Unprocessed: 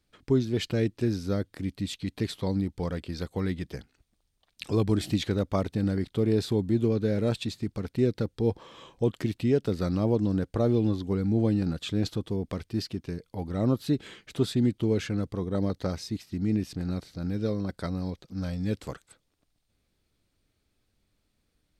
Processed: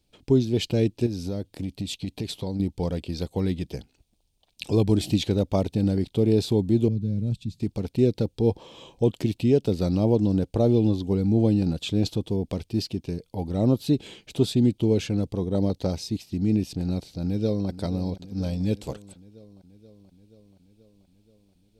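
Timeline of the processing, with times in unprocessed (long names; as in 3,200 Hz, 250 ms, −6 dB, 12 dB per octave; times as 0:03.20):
0:01.06–0:02.60: downward compressor, threshold −29 dBFS
0:06.88–0:07.60: drawn EQ curve 180 Hz 0 dB, 430 Hz −19 dB, 750 Hz −23 dB, 5,800 Hz −15 dB
0:17.23–0:17.69: delay throw 480 ms, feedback 70%, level −14.5 dB
whole clip: flat-topped bell 1,500 Hz −10.5 dB 1.1 octaves; level +4 dB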